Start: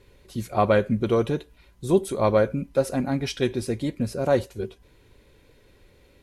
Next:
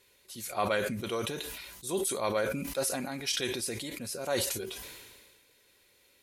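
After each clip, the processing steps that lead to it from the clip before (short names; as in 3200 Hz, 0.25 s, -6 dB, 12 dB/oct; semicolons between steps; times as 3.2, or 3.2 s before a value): tilt +4 dB/oct; sustainer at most 34 dB/s; gain -8 dB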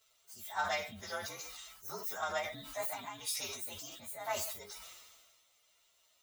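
inharmonic rescaling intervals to 119%; resonant low shelf 600 Hz -12 dB, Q 1.5; ending taper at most 110 dB/s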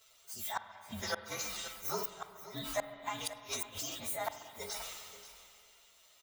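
flipped gate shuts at -29 dBFS, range -36 dB; echo 0.533 s -14.5 dB; reverb RT60 2.7 s, pre-delay 46 ms, DRR 10 dB; gain +7 dB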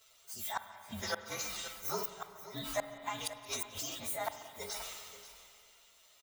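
feedback echo 0.177 s, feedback 56%, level -22 dB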